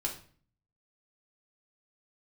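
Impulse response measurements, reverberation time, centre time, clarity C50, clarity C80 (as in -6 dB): 0.45 s, 17 ms, 9.0 dB, 14.0 dB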